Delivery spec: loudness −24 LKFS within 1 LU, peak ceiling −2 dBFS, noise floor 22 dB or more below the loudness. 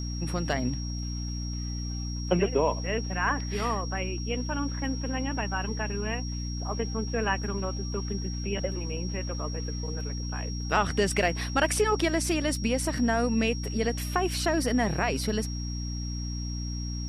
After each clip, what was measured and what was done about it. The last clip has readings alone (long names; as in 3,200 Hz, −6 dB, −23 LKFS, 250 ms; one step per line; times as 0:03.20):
mains hum 60 Hz; hum harmonics up to 300 Hz; level of the hum −31 dBFS; interfering tone 5,600 Hz; level of the tone −40 dBFS; integrated loudness −29.5 LKFS; sample peak −10.5 dBFS; target loudness −24.0 LKFS
→ hum removal 60 Hz, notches 5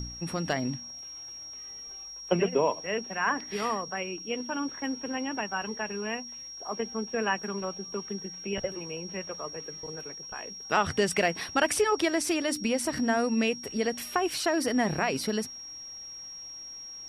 mains hum none found; interfering tone 5,600 Hz; level of the tone −40 dBFS
→ notch filter 5,600 Hz, Q 30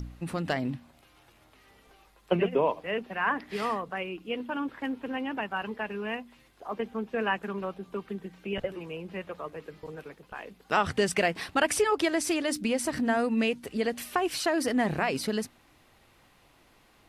interfering tone none found; integrated loudness −30.0 LKFS; sample peak −11.0 dBFS; target loudness −24.0 LKFS
→ level +6 dB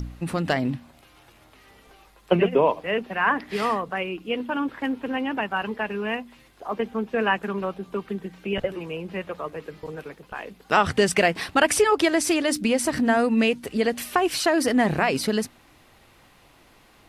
integrated loudness −24.0 LKFS; sample peak −5.0 dBFS; background noise floor −55 dBFS